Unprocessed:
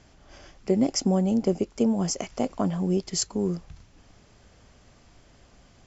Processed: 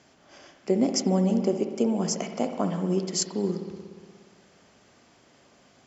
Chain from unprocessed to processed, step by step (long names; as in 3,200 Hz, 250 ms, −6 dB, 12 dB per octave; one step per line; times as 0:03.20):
high-pass filter 190 Hz 12 dB per octave
spring reverb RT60 1.8 s, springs 59 ms, chirp 35 ms, DRR 6 dB